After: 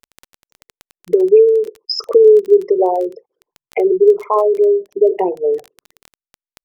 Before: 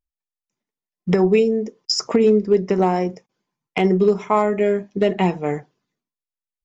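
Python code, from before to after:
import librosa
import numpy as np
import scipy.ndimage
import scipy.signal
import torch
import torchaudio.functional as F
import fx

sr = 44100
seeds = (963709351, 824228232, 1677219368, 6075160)

y = fx.envelope_sharpen(x, sr, power=3.0)
y = fx.low_shelf_res(y, sr, hz=300.0, db=-12.5, q=3.0)
y = fx.dmg_crackle(y, sr, seeds[0], per_s=13.0, level_db=-22.0)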